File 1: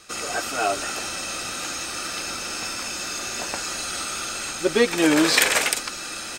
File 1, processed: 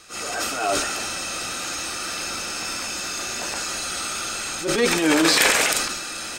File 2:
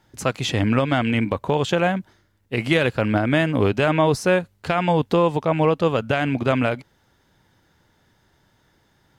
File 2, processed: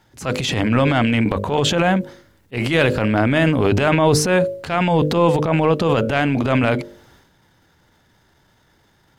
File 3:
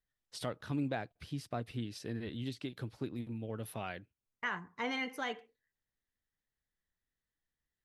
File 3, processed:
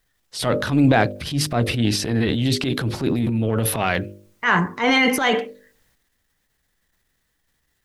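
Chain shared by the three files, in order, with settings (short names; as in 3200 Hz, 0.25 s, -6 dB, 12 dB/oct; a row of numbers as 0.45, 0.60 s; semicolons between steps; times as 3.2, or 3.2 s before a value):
de-hum 50.34 Hz, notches 12; transient shaper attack -9 dB, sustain +8 dB; normalise peaks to -2 dBFS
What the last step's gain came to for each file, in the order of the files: +1.0, +4.0, +20.5 dB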